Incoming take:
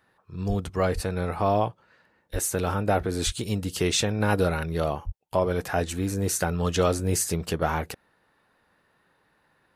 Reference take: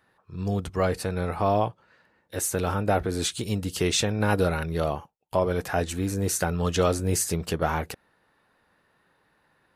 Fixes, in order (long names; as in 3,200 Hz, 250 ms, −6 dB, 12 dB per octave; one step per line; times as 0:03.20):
high-pass at the plosives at 0:00.48/0:00.94/0:02.32/0:03.25/0:05.05